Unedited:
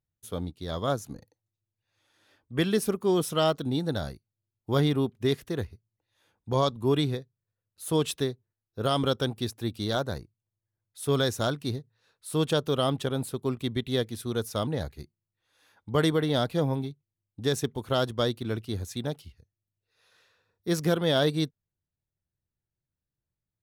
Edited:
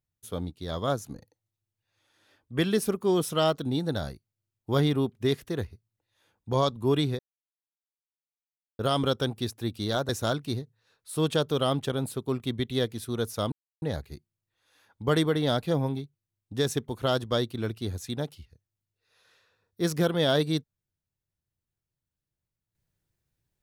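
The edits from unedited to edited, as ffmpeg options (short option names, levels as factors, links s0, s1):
-filter_complex "[0:a]asplit=5[s0][s1][s2][s3][s4];[s0]atrim=end=7.19,asetpts=PTS-STARTPTS,afade=t=out:st=7.186:d=0.004:c=hsin[s5];[s1]atrim=start=7.19:end=8.79,asetpts=PTS-STARTPTS,volume=0[s6];[s2]atrim=start=8.79:end=10.092,asetpts=PTS-STARTPTS,afade=t=in:d=0.004:c=hsin[s7];[s3]atrim=start=11.258:end=14.69,asetpts=PTS-STARTPTS,afade=t=out:st=3.428:d=0.004:c=hsin,apad=pad_dur=0.3[s8];[s4]atrim=start=14.69,asetpts=PTS-STARTPTS,afade=t=in:d=0.004:c=hsin[s9];[s5][s6][s7]concat=n=3:v=0:a=1[s10];[s8][s9]concat=n=2:v=0:a=1[s11];[s10][s11]acrossfade=d=0.004:c1=hsin:c2=hsin"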